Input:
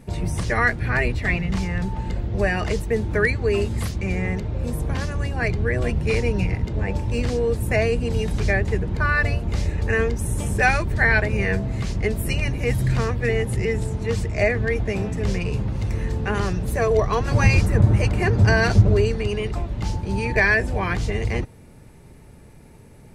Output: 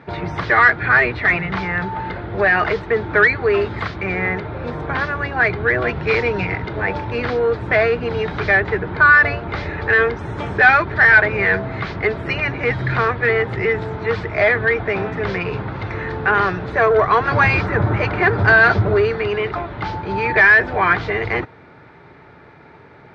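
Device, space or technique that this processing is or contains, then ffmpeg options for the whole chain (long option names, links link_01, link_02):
overdrive pedal into a guitar cabinet: -filter_complex "[0:a]asplit=2[link_01][link_02];[link_02]highpass=frequency=720:poles=1,volume=19dB,asoftclip=type=tanh:threshold=-2.5dB[link_03];[link_01][link_03]amix=inputs=2:normalize=0,lowpass=frequency=3200:poles=1,volume=-6dB,highpass=78,equalizer=frequency=220:width_type=q:width=4:gain=-8,equalizer=frequency=530:width_type=q:width=4:gain=-5,equalizer=frequency=1400:width_type=q:width=4:gain=6,equalizer=frequency=2800:width_type=q:width=4:gain=-8,lowpass=frequency=3600:width=0.5412,lowpass=frequency=3600:width=1.3066,asettb=1/sr,asplit=3[link_04][link_05][link_06];[link_04]atrim=end=5.884[link_07];[link_05]atrim=start=5.88:end=7.05,asetpts=PTS-STARTPTS,afade=type=in:duration=0.004:curve=qsin,afade=type=out:start_time=1.166:duration=0.004:curve=qsin,highshelf=frequency=4400:gain=7[link_08];[link_06]atrim=start=7.046[link_09];[link_07][link_08]acrossfade=duration=0.004:curve1=hsin:curve2=qsin[link_10];[link_10][link_09]acrossfade=duration=0.004:curve1=qsin:curve2=hsin"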